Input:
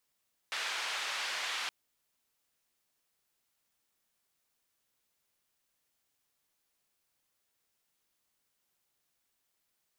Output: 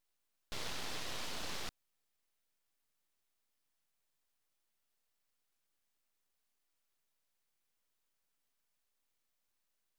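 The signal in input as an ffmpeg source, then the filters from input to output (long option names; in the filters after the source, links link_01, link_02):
-f lavfi -i "anoisesrc=color=white:duration=1.17:sample_rate=44100:seed=1,highpass=frequency=940,lowpass=frequency=3500,volume=-22.7dB"
-af "equalizer=frequency=6100:width=0.81:gain=-11.5,aeval=exprs='abs(val(0))':channel_layout=same"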